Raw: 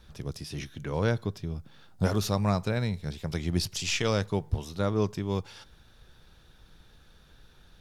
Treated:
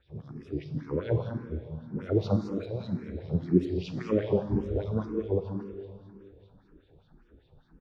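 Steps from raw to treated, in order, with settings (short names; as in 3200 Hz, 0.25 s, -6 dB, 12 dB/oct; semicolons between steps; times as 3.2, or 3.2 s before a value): spectral swells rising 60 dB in 0.35 s; RIAA curve playback; 4.84–5.24 expander -15 dBFS; tilt shelf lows +6 dB, about 730 Hz; 2.36–2.81 negative-ratio compressor -17 dBFS, ratio -0.5; LFO band-pass sine 5 Hz 310–4200 Hz; loudspeakers at several distances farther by 60 m -11 dB, 73 m -7 dB; plate-style reverb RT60 2.5 s, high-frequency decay 0.9×, DRR 7.5 dB; endless phaser +1.9 Hz; gain +3.5 dB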